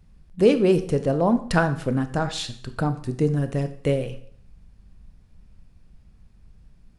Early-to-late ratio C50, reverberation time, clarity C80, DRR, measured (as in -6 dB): 13.0 dB, 0.60 s, 16.0 dB, 9.0 dB